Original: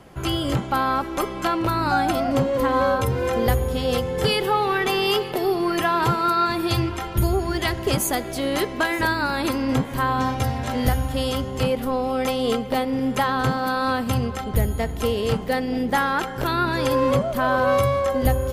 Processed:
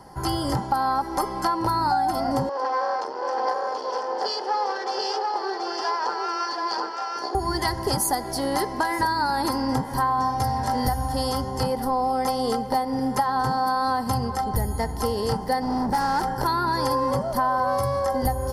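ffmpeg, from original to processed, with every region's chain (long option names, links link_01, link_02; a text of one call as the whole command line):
ffmpeg -i in.wav -filter_complex "[0:a]asettb=1/sr,asplit=3[link_01][link_02][link_03];[link_01]atrim=end=2.494[link_04];[link_02]atrim=start=2.49:end=7.35,asetpts=PTS-STARTPTS,afade=type=in:duration=0.004:curve=qsin,afade=type=out:start_time=4.856:duration=0.004:curve=qsin,aeval=exprs='max(val(0),0)':channel_layout=same,highpass=frequency=380:width=0.5412,highpass=frequency=380:width=1.3066,equalizer=frequency=950:width_type=q:width=4:gain=-5,equalizer=frequency=2000:width_type=q:width=4:gain=-7,equalizer=frequency=3800:width_type=q:width=4:gain=-5,lowpass=frequency=5500:width=0.5412,lowpass=frequency=5500:width=1.3066,aecho=1:1:731:0.668,atrim=end_sample=214326[link_05];[link_03]atrim=start=7.346[link_06];[link_04][link_05]acrossfade=duration=0.004:curve1=hsin:curve2=qsin[link_07];[link_07][link_06]acrossfade=duration=0.004:curve1=qsin:curve2=hsin,asettb=1/sr,asplit=3[link_08][link_09][link_10];[link_08]atrim=end=15.624[link_11];[link_09]atrim=start=15.62:end=16.35,asetpts=PTS-STARTPTS,afade=type=in:duration=0.004:curve=qsin,afade=type=out:start_time=0.726:duration=0.004:curve=qsin,lowshelf=frequency=260:gain=10.5,asoftclip=type=hard:threshold=-22dB[link_12];[link_10]atrim=start=16.346[link_13];[link_11][link_12]acrossfade=duration=0.004:curve1=hsin:curve2=qsin[link_14];[link_14][link_13]acrossfade=duration=0.004:curve1=qsin:curve2=hsin,superequalizer=9b=3.16:12b=0.251:13b=0.447:14b=2.51:16b=2,acompressor=threshold=-18dB:ratio=6,volume=-1.5dB" out.wav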